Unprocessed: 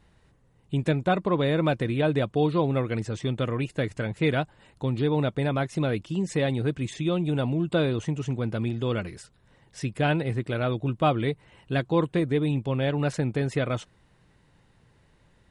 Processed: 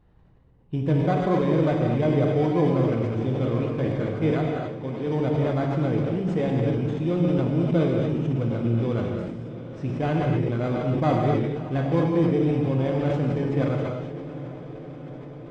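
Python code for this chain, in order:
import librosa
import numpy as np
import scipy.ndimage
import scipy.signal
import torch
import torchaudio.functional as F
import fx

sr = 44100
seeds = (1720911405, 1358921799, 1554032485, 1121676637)

p1 = fx.highpass(x, sr, hz=370.0, slope=6, at=(4.31, 5.07))
p2 = fx.sample_hold(p1, sr, seeds[0], rate_hz=2700.0, jitter_pct=0)
p3 = p1 + F.gain(torch.from_numpy(p2), -3.5).numpy()
p4 = fx.spacing_loss(p3, sr, db_at_10k=28)
p5 = p4 + fx.echo_diffused(p4, sr, ms=692, feedback_pct=74, wet_db=-15.0, dry=0)
p6 = fx.rev_gated(p5, sr, seeds[1], gate_ms=290, shape='flat', drr_db=-0.5)
p7 = fx.sustainer(p6, sr, db_per_s=35.0)
y = F.gain(torch.from_numpy(p7), -4.5).numpy()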